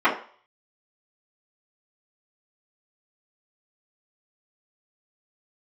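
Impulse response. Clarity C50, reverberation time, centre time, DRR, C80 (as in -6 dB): 9.0 dB, 0.45 s, 21 ms, -13.0 dB, 14.0 dB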